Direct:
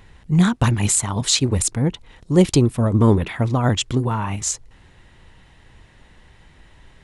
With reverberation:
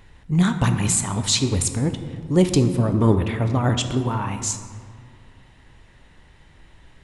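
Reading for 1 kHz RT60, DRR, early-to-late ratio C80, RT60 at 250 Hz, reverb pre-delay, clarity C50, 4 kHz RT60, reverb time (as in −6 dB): 2.1 s, 7.0 dB, 10.0 dB, 2.6 s, 3 ms, 9.0 dB, 1.1 s, 2.1 s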